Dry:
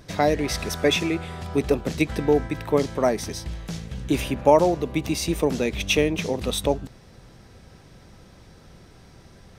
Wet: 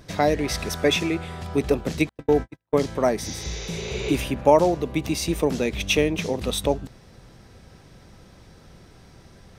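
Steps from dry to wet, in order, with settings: 2.09–2.78 s: gate -22 dBFS, range -50 dB; 3.26–4.09 s: spectral replace 350–7200 Hz both

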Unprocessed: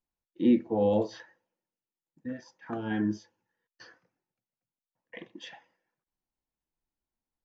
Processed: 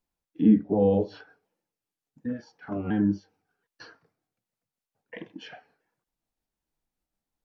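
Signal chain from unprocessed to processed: sawtooth pitch modulation -3 st, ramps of 726 ms; tilt shelf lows +6 dB, about 940 Hz; tape noise reduction on one side only encoder only

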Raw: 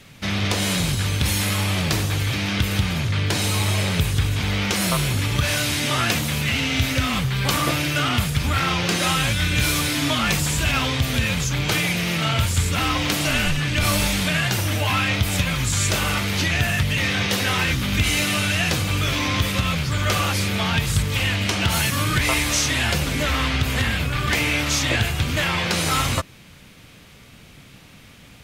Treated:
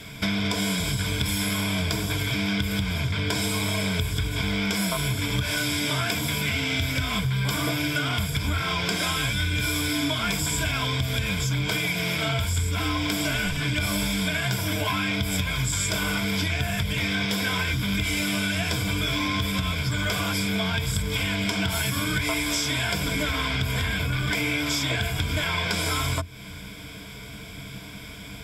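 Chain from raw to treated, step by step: rippled EQ curve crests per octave 1.7, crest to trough 13 dB; compression, threshold -28 dBFS, peak gain reduction 15 dB; trim +4.5 dB

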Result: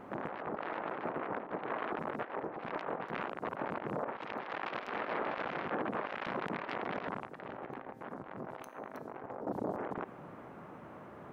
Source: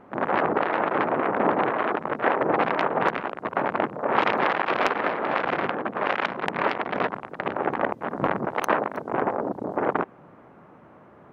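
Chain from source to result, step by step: treble shelf 4.8 kHz +7.5 dB; compressor with a negative ratio -29 dBFS, ratio -0.5; peak limiter -21 dBFS, peak gain reduction 12.5 dB; 7.27–9.47 s: feedback comb 130 Hz, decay 0.87 s, harmonics all, mix 60%; trim -4.5 dB

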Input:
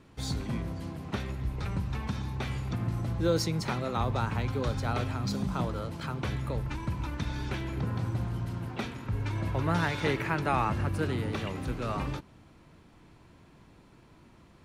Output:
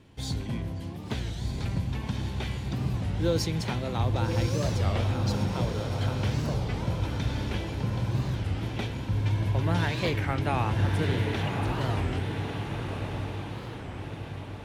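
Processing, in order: graphic EQ with 31 bands 100 Hz +6 dB, 1.25 kHz -8 dB, 3.15 kHz +5 dB; echo that smears into a reverb 1149 ms, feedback 56%, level -4 dB; warped record 33 1/3 rpm, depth 250 cents

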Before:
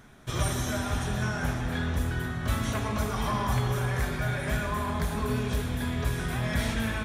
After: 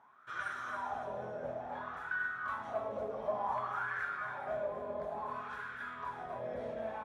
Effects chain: wah-wah 0.57 Hz 520–1500 Hz, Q 8.2; on a send: delay 275 ms -9 dB; on the sum: trim +6 dB

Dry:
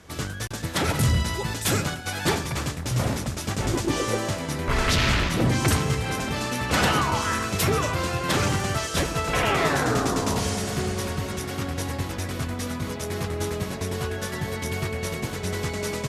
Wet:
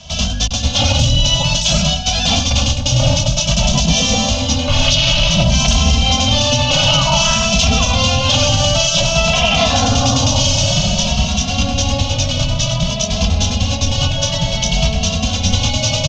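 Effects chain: octave divider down 1 oct, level +3 dB; in parallel at -3.5 dB: short-mantissa float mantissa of 2-bit; on the sum: FFT filter 260 Hz 0 dB, 380 Hz -27 dB, 580 Hz +7 dB, 1.9 kHz -12 dB, 2.9 kHz +14 dB, 4.4 kHz +8 dB, 6.4 kHz +11 dB, 9.8 kHz -28 dB; loudness maximiser +8 dB; endless flanger 2.6 ms +0.54 Hz

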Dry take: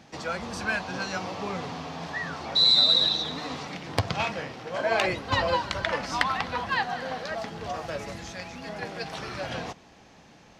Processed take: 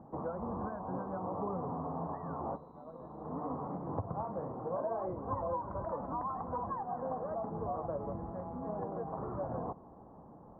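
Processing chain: saturation -16 dBFS, distortion -16 dB; compression 6:1, threshold -33 dBFS, peak gain reduction 12.5 dB; elliptic low-pass 1.1 kHz, stop band 60 dB; trim +1 dB

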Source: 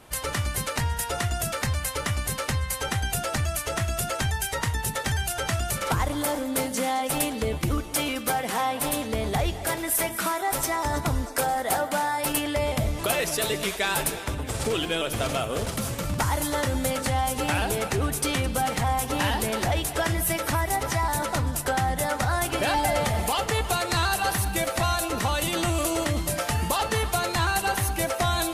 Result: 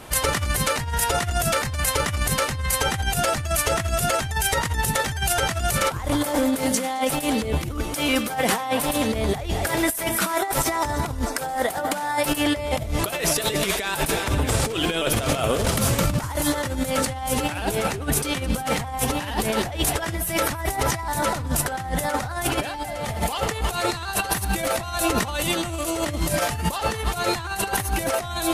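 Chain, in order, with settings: compressor with a negative ratio -29 dBFS, ratio -0.5; trim +6 dB

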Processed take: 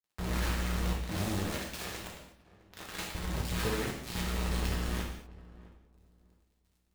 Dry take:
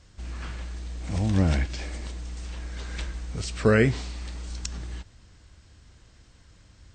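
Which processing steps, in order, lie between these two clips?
level-controlled noise filter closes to 1.3 kHz, open at -19 dBFS; 0.93–3.15 s: high-pass 140 Hz 12 dB/octave; compression 10:1, threshold -35 dBFS, peak gain reduction 20 dB; bit crusher 6-bit; crackle 56 per s -60 dBFS; tremolo saw up 1.9 Hz, depth 35%; filtered feedback delay 662 ms, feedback 25%, low-pass 1 kHz, level -18 dB; gated-style reverb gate 270 ms falling, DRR -2.5 dB

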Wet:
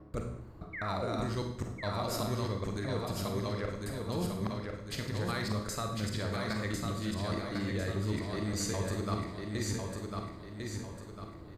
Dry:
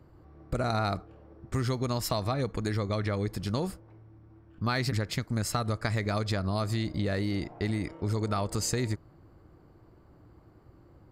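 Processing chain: slices played last to first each 195 ms, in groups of 3; band-stop 800 Hz, Q 13; de-hum 63.1 Hz, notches 4; reverse; compression 6:1, threshold -37 dBFS, peak gain reduction 12.5 dB; reverse; painted sound fall, 0.70–1.16 s, 210–2400 Hz -44 dBFS; overload inside the chain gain 29 dB; on a send: feedback delay 1008 ms, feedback 42%, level -4 dB; on the sum: Schroeder reverb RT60 0.61 s, combs from 32 ms, DRR 3.5 dB; speed mistake 25 fps video run at 24 fps; trim +3.5 dB

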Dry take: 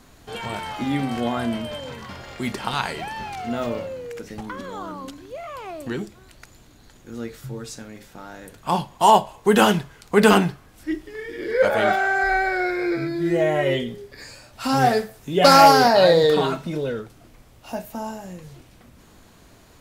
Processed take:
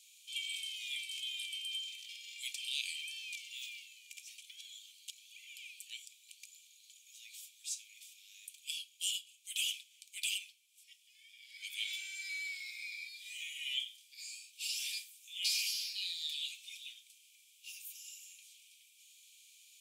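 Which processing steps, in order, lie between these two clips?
rippled Chebyshev high-pass 2.3 kHz, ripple 6 dB; gain riding within 4 dB 0.5 s; trim -3.5 dB

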